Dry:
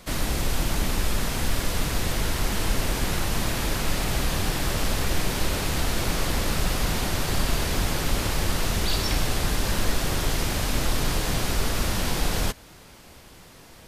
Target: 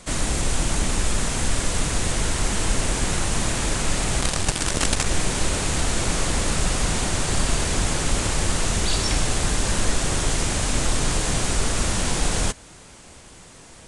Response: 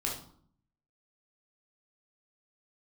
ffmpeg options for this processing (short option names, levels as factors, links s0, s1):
-filter_complex "[0:a]aexciter=amount=2.7:drive=3.2:freq=6500,asettb=1/sr,asplit=3[s0][s1][s2];[s0]atrim=end=4.214[s3];[s1]atrim=start=4.21:end=5.06,asetpts=PTS-STARTPTS,afade=t=in:d=0.004:c=qsin,afade=t=out:st=0.846:d=0.004:c=qsin,acrusher=bits=4:dc=4:mix=0:aa=0.000001[s4];[s2]atrim=start=5.056[s5];[s3][s4]acrossfade=d=0.004:c1=hsin:c2=qsin[s6];[s6][s5]acrossfade=d=0.004:c1=qsin:c2=hsin,aresample=22050,aresample=44100,volume=1.26"